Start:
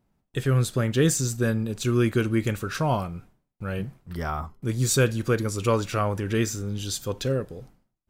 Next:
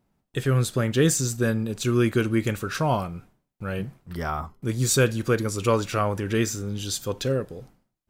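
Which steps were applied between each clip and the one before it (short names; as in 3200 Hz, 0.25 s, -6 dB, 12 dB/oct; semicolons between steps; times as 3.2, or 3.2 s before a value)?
low shelf 95 Hz -5 dB; gain +1.5 dB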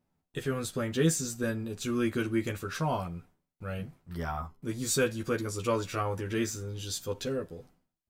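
doubler 12 ms -2.5 dB; gain -8.5 dB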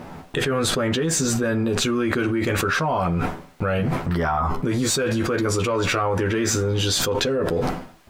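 overdrive pedal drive 10 dB, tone 1200 Hz, clips at -15.5 dBFS; fast leveller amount 100%; gain +2 dB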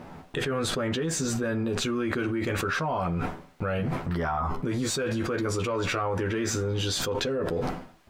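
high shelf 7100 Hz -4.5 dB; gain -6 dB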